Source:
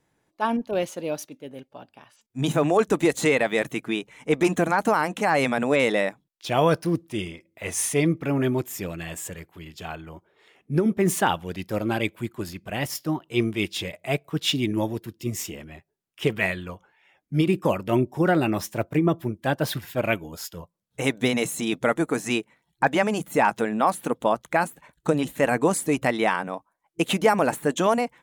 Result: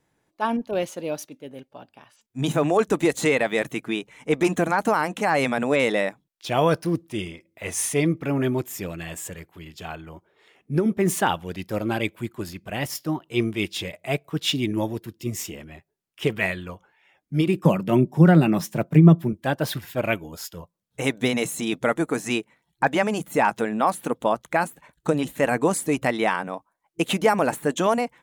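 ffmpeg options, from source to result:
ffmpeg -i in.wav -filter_complex "[0:a]asettb=1/sr,asplit=3[link_01][link_02][link_03];[link_01]atrim=end=17.654[link_04];[link_02]atrim=start=17.65:end=19.33,asetpts=PTS-STARTPTS,afade=type=in:duration=0.004:curve=qsin,afade=type=out:start_time=1.676:duration=0.004:curve=qsin,highpass=frequency=160:width_type=q:width=4.9[link_05];[link_03]atrim=start=19.326[link_06];[link_04][link_05]acrossfade=duration=0.004:curve1=hsin:curve2=qsin[link_07];[link_07][link_06]acrossfade=duration=0.004:curve1=qsin:curve2=hsin" out.wav

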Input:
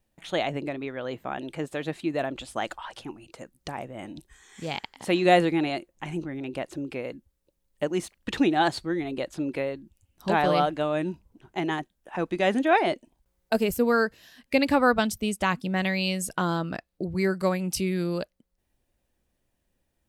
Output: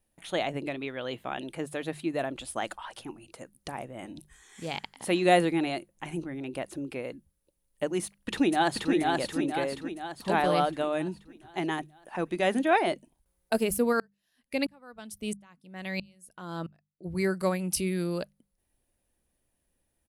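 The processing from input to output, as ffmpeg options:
ffmpeg -i in.wav -filter_complex "[0:a]asettb=1/sr,asplit=3[link_01][link_02][link_03];[link_01]atrim=end=0.644[link_04];[link_02]atrim=start=0.64:end=1.44,asetpts=PTS-STARTPTS,afade=type=in:duration=0.004:curve=qsin,afade=type=out:start_time=0.796:duration=0.004:curve=qsin,equalizer=frequency=3200:width=1.5:gain=8[link_05];[link_03]atrim=start=1.436[link_06];[link_04][link_05]acrossfade=duration=0.004:curve1=hsin:curve2=qsin[link_07];[link_07][link_06]acrossfade=duration=0.004:curve1=qsin:curve2=hsin,asplit=2[link_08][link_09];[link_09]afade=type=in:start_time=8.04:duration=0.01,afade=type=out:start_time=8.92:duration=0.01,aecho=0:1:480|960|1440|1920|2400|2880|3360|3840:0.749894|0.412442|0.226843|0.124764|0.06862|0.037741|0.0207576|0.0114167[link_10];[link_08][link_10]amix=inputs=2:normalize=0,asplit=3[link_11][link_12][link_13];[link_11]afade=type=out:start_time=13.92:duration=0.02[link_14];[link_12]aeval=exprs='val(0)*pow(10,-38*if(lt(mod(-1.5*n/s,1),2*abs(-1.5)/1000),1-mod(-1.5*n/s,1)/(2*abs(-1.5)/1000),(mod(-1.5*n/s,1)-2*abs(-1.5)/1000)/(1-2*abs(-1.5)/1000))/20)':channel_layout=same,afade=type=in:start_time=13.92:duration=0.02,afade=type=out:start_time=17.04:duration=0.02[link_15];[link_13]afade=type=in:start_time=17.04:duration=0.02[link_16];[link_14][link_15][link_16]amix=inputs=3:normalize=0,equalizer=frequency=10000:width=4.1:gain=14,bandreject=frequency=50:width_type=h:width=6,bandreject=frequency=100:width_type=h:width=6,bandreject=frequency=150:width_type=h:width=6,bandreject=frequency=200:width_type=h:width=6,volume=-2.5dB" out.wav

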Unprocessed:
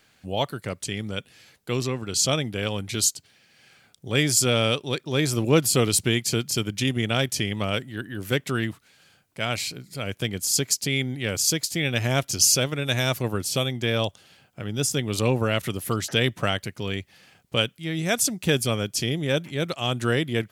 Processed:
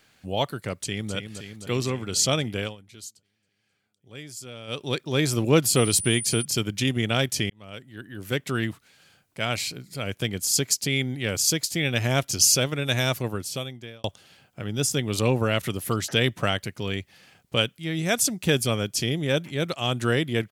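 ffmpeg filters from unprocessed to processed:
ffmpeg -i in.wav -filter_complex "[0:a]asplit=2[link_01][link_02];[link_02]afade=type=in:start_time=0.73:duration=0.01,afade=type=out:start_time=1.14:duration=0.01,aecho=0:1:260|520|780|1040|1300|1560|1820|2080|2340|2600|2860|3120:0.398107|0.29858|0.223935|0.167951|0.125964|0.0944727|0.0708545|0.0531409|0.0398557|0.0298918|0.0224188|0.0168141[link_03];[link_01][link_03]amix=inputs=2:normalize=0,asettb=1/sr,asplit=3[link_04][link_05][link_06];[link_04]atrim=end=5.764[link_07];[link_05]atrim=start=5.76:end=6.45,asetpts=PTS-STARTPTS,afade=type=in:duration=0.004:curve=qsin,afade=type=out:start_time=0.686:duration=0.004:curve=qsin,aeval=exprs='val(0)+0.0316*sin(2*PI*9400*n/s)':channel_layout=same[link_08];[link_06]atrim=start=6.446[link_09];[link_07][link_08]acrossfade=duration=0.004:curve1=hsin:curve2=qsin[link_10];[link_10][link_09]acrossfade=duration=0.004:curve1=qsin:curve2=hsin,asplit=5[link_11][link_12][link_13][link_14][link_15];[link_11]atrim=end=2.76,asetpts=PTS-STARTPTS,afade=type=out:start_time=2.59:duration=0.17:silence=0.112202[link_16];[link_12]atrim=start=2.76:end=4.67,asetpts=PTS-STARTPTS,volume=-19dB[link_17];[link_13]atrim=start=4.67:end=7.5,asetpts=PTS-STARTPTS,afade=type=in:duration=0.17:silence=0.112202,afade=type=out:start_time=2.826:duration=0.004:curve=hsin[link_18];[link_14]atrim=start=7.5:end=14.04,asetpts=PTS-STARTPTS,afade=type=in:duration=1.16,afade=type=out:start_time=5.54:duration=1[link_19];[link_15]atrim=start=14.04,asetpts=PTS-STARTPTS,afade=type=in:duration=0.004:curve=hsin[link_20];[link_16][link_17][link_18][link_19][link_20]concat=n=5:v=0:a=1" out.wav

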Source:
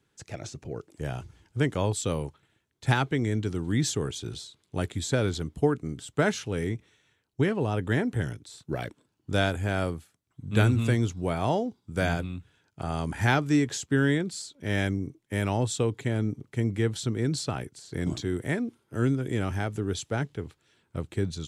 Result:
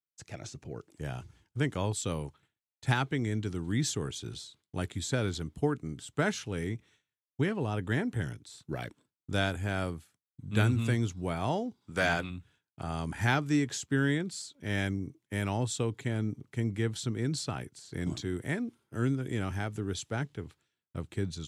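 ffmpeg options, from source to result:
ffmpeg -i in.wav -filter_complex "[0:a]asplit=3[link_01][link_02][link_03];[link_01]afade=type=out:start_time=11.8:duration=0.02[link_04];[link_02]asplit=2[link_05][link_06];[link_06]highpass=frequency=720:poles=1,volume=15dB,asoftclip=type=tanh:threshold=-12dB[link_07];[link_05][link_07]amix=inputs=2:normalize=0,lowpass=frequency=3900:poles=1,volume=-6dB,afade=type=in:start_time=11.8:duration=0.02,afade=type=out:start_time=12.29:duration=0.02[link_08];[link_03]afade=type=in:start_time=12.29:duration=0.02[link_09];[link_04][link_08][link_09]amix=inputs=3:normalize=0,highpass=frequency=58:poles=1,agate=range=-33dB:threshold=-53dB:ratio=3:detection=peak,equalizer=frequency=500:width_type=o:width=1.2:gain=-3.5,volume=-3dB" out.wav

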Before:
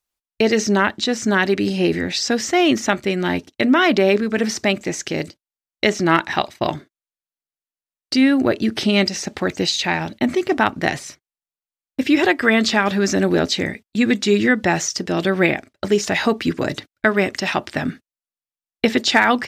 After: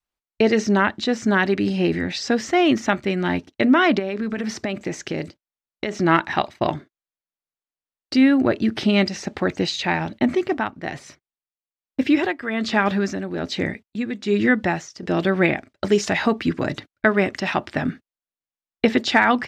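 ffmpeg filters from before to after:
ffmpeg -i in.wav -filter_complex "[0:a]asplit=3[link_01][link_02][link_03];[link_01]afade=type=out:start_time=3.98:duration=0.02[link_04];[link_02]acompressor=threshold=-19dB:ratio=10:attack=3.2:release=140:knee=1:detection=peak,afade=type=in:start_time=3.98:duration=0.02,afade=type=out:start_time=5.93:duration=0.02[link_05];[link_03]afade=type=in:start_time=5.93:duration=0.02[link_06];[link_04][link_05][link_06]amix=inputs=3:normalize=0,asettb=1/sr,asplit=3[link_07][link_08][link_09];[link_07]atrim=end=10.364[link_10];[link_08]atrim=start=10.36:end=15.03,asetpts=PTS-STARTPTS,afade=type=in:duration=0.004:curve=qsin,afade=type=out:start_time=4.666:duration=0.004:curve=qsin,tremolo=f=1.2:d=0.7[link_11];[link_09]atrim=start=15.026[link_12];[link_10][link_11]acrossfade=duration=0.004:curve1=hsin:curve2=qsin[link_13];[link_13][link_12]acrossfade=duration=0.004:curve1=qsin:curve2=hsin,asettb=1/sr,asplit=3[link_14][link_15][link_16];[link_14]atrim=end=15.694[link_17];[link_15]atrim=start=15.69:end=16.13,asetpts=PTS-STARTPTS,afade=type=in:duration=0.004:curve=qsin,afade=type=out:start_time=0.436:duration=0.004:curve=qsin,equalizer=frequency=7900:width=0.39:gain=6[link_18];[link_16]atrim=start=16.126[link_19];[link_17][link_18]acrossfade=duration=0.004:curve1=hsin:curve2=qsin[link_20];[link_20][link_19]acrossfade=duration=0.004:curve1=qsin:curve2=hsin,adynamicequalizer=threshold=0.0282:dfrequency=450:dqfactor=1.6:tfrequency=450:tqfactor=1.6:attack=5:release=100:ratio=0.375:range=2.5:mode=cutabove:tftype=bell,lowpass=frequency=2400:poles=1" out.wav

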